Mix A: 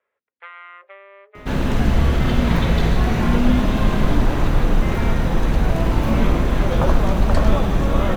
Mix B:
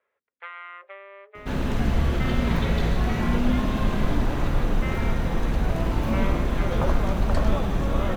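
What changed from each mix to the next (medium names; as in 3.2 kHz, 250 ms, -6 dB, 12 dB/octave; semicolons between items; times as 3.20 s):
second sound -3.0 dB; reverb: off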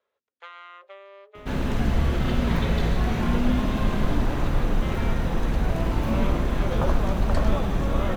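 first sound: remove resonant low-pass 2.1 kHz, resonance Q 2.5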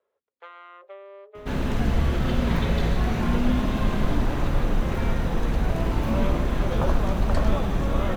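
first sound: add tilt EQ -4 dB/octave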